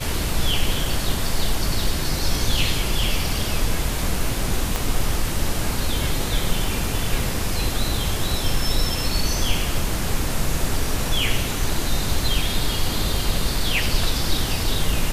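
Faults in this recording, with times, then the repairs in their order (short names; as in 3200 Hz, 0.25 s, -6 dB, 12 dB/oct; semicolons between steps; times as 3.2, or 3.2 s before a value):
4.76 pop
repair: de-click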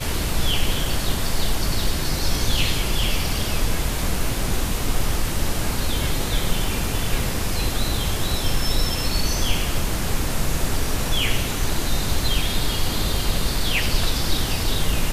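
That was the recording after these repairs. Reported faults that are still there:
4.76 pop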